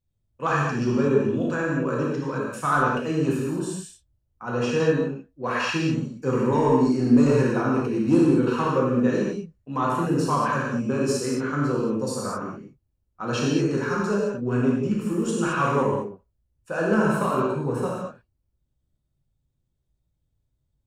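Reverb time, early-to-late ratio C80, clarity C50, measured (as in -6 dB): no single decay rate, 1.5 dB, -1.0 dB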